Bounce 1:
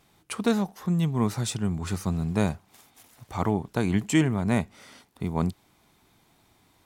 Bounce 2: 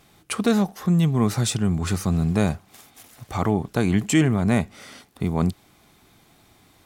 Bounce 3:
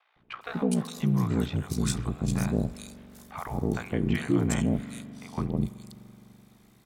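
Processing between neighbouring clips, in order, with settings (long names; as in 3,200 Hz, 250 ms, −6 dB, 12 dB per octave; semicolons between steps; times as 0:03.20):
in parallel at +1.5 dB: brickwall limiter −20.5 dBFS, peak gain reduction 10.5 dB; on the sum: notch filter 940 Hz, Q 9.4
ring modulation 30 Hz; three-band delay without the direct sound mids, lows, highs 160/410 ms, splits 690/3,200 Hz; spring reverb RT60 3.6 s, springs 42 ms, chirp 50 ms, DRR 15.5 dB; level −3 dB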